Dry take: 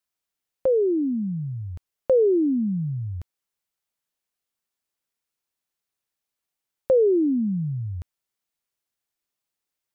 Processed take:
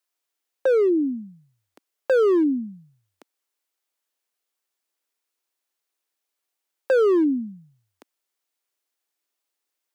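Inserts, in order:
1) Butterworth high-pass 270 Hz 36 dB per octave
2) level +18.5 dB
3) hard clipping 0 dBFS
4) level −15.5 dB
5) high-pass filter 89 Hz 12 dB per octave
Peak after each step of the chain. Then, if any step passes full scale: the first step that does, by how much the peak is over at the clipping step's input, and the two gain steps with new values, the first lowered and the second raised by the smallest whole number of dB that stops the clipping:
−11.5, +7.0, 0.0, −15.5, −13.5 dBFS
step 2, 7.0 dB
step 2 +11.5 dB, step 4 −8.5 dB

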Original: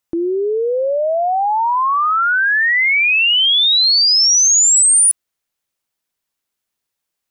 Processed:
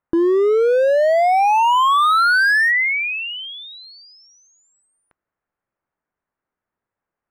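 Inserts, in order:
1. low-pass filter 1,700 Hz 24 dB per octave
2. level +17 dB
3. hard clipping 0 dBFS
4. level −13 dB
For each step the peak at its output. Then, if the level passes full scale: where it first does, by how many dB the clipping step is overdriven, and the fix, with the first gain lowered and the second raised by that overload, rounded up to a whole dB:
−12.5, +4.5, 0.0, −13.0 dBFS
step 2, 4.5 dB
step 2 +12 dB, step 4 −8 dB

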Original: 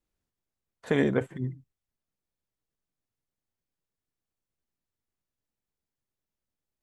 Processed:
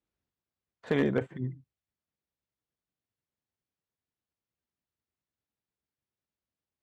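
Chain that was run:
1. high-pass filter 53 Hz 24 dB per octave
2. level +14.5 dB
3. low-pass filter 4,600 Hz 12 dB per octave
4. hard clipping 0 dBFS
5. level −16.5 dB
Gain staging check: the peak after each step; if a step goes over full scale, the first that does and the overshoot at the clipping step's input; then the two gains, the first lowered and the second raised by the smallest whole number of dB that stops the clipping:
−10.0, +4.5, +4.5, 0.0, −16.5 dBFS
step 2, 4.5 dB
step 2 +9.5 dB, step 5 −11.5 dB

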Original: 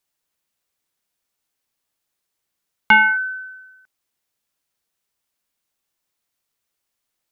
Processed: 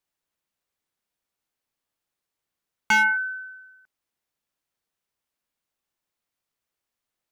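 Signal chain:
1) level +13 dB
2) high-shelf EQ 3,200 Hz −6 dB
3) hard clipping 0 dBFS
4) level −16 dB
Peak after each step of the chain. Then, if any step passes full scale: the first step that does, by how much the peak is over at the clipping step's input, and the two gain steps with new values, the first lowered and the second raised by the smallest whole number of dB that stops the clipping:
+8.0, +7.5, 0.0, −16.0 dBFS
step 1, 7.5 dB
step 1 +5 dB, step 4 −8 dB

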